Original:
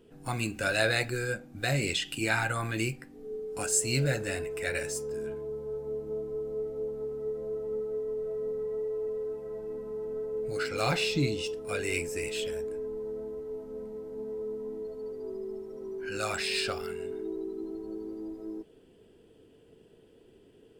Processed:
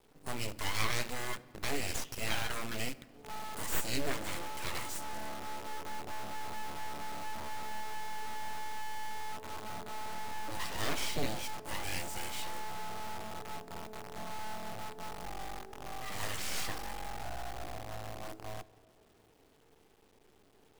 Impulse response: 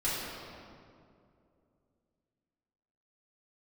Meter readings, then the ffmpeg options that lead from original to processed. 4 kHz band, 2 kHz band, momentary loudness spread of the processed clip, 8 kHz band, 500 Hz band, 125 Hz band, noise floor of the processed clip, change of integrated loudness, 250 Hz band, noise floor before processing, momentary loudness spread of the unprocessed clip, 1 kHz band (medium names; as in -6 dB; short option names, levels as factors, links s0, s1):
-4.5 dB, -7.0 dB, 9 LU, -6.0 dB, -14.0 dB, -10.0 dB, -64 dBFS, -7.0 dB, -8.5 dB, -59 dBFS, 12 LU, +1.5 dB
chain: -filter_complex "[0:a]acrusher=bits=7:dc=4:mix=0:aa=0.000001,aeval=exprs='abs(val(0))':c=same,asplit=2[s0][s1];[1:a]atrim=start_sample=2205[s2];[s1][s2]afir=irnorm=-1:irlink=0,volume=0.0447[s3];[s0][s3]amix=inputs=2:normalize=0,volume=0.596"